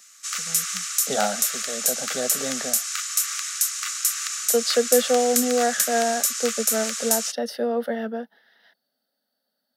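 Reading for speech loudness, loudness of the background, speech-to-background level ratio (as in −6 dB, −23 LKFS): −25.5 LKFS, −23.5 LKFS, −2.0 dB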